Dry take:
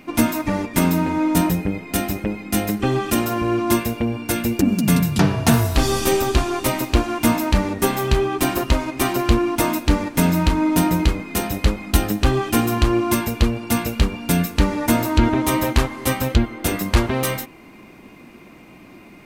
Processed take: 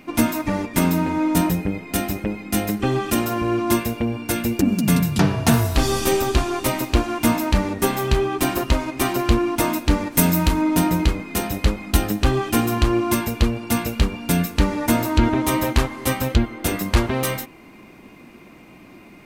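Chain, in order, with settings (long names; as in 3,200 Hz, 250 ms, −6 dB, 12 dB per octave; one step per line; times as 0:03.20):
0:10.11–0:10.61: high-shelf EQ 6,500 Hz → 9,900 Hz +11.5 dB
level −1 dB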